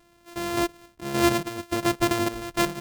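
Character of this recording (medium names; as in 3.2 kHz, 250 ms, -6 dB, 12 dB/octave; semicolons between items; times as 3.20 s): a buzz of ramps at a fixed pitch in blocks of 128 samples; random-step tremolo 3.5 Hz, depth 70%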